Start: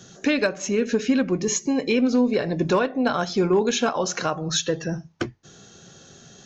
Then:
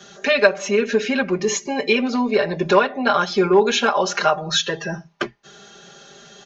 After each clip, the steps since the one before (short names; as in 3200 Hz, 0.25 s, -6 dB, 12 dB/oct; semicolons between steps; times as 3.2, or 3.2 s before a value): three-band isolator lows -12 dB, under 430 Hz, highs -12 dB, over 4700 Hz; comb 5 ms, depth 100%; gain +5 dB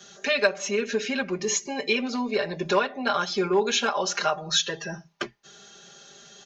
high shelf 3600 Hz +9 dB; gain -8 dB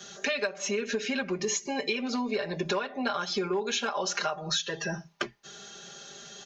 compressor 6:1, threshold -30 dBFS, peak gain reduction 14 dB; gain +3 dB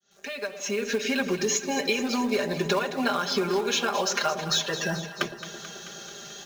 opening faded in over 0.99 s; in parallel at -5.5 dB: companded quantiser 4-bit; on the sum: echo with dull and thin repeats by turns 0.109 s, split 810 Hz, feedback 82%, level -10.5 dB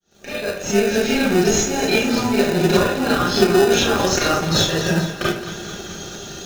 reverb RT60 0.40 s, pre-delay 27 ms, DRR -7 dB; in parallel at -3 dB: sample-rate reducer 1100 Hz, jitter 0%; on the sum: gain -2 dB